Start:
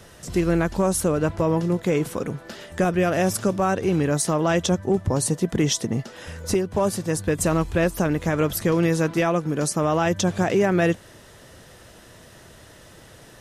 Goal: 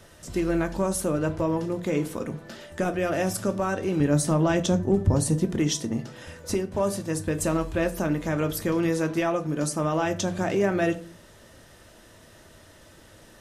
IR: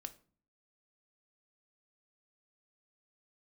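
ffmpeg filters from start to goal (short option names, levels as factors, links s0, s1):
-filter_complex "[0:a]asettb=1/sr,asplit=3[s0][s1][s2];[s0]atrim=end=4.004[s3];[s1]atrim=start=4:end=5.45,asetpts=PTS-STARTPTS,afade=t=in:d=0.004:c=qsin,afade=t=out:st=1.446:d=0.004:c=qsin,lowshelf=f=230:g=9.5[s4];[s2]atrim=start=5.446[s5];[s3][s4]acrossfade=d=0.004:c1=hsin:c2=qsin[s6];[s6][s5]acrossfade=d=0.004:c1=qsin:c2=hsin[s7];[1:a]atrim=start_sample=2205[s8];[s7][s8]afir=irnorm=-1:irlink=0"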